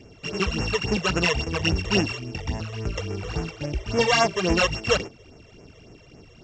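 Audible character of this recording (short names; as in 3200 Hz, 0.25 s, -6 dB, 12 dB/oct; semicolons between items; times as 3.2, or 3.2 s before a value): a buzz of ramps at a fixed pitch in blocks of 16 samples; phasing stages 12, 3.6 Hz, lowest notch 240–4100 Hz; µ-law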